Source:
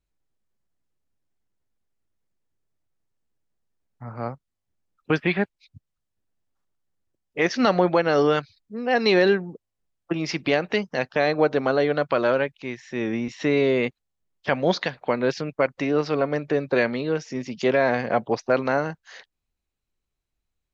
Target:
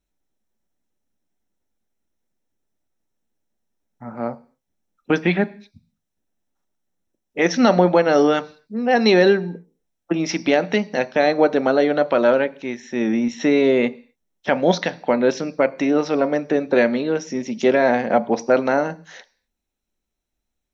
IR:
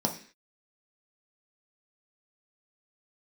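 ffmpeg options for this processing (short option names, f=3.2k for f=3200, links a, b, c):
-filter_complex "[0:a]asplit=2[a][b];[1:a]atrim=start_sample=2205,highshelf=f=4.8k:g=11.5[c];[b][c]afir=irnorm=-1:irlink=0,volume=-16dB[d];[a][d]amix=inputs=2:normalize=0,volume=1dB"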